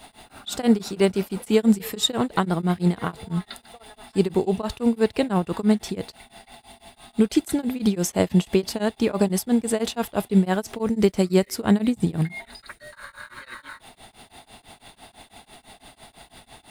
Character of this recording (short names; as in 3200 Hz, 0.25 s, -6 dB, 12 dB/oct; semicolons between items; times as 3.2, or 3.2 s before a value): a quantiser's noise floor 10-bit, dither none; tremolo triangle 6 Hz, depth 100%